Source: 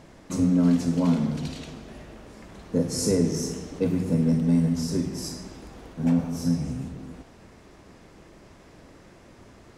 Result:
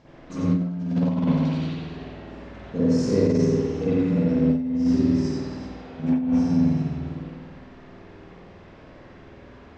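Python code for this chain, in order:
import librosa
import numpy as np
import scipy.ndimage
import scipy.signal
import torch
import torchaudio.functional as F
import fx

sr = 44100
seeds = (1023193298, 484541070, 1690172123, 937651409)

p1 = scipy.signal.sosfilt(scipy.signal.butter(4, 5900.0, 'lowpass', fs=sr, output='sos'), x)
p2 = p1 + fx.echo_multitap(p1, sr, ms=(44, 57, 90, 263, 376, 391), db=(-16.5, -19.5, -3.5, -12.5, -15.5, -17.0), dry=0)
p3 = fx.rev_spring(p2, sr, rt60_s=1.1, pass_ms=(51,), chirp_ms=40, drr_db=-9.0)
p4 = fx.over_compress(p3, sr, threshold_db=-10.0, ratio=-0.5)
y = p4 * 10.0 ** (-9.0 / 20.0)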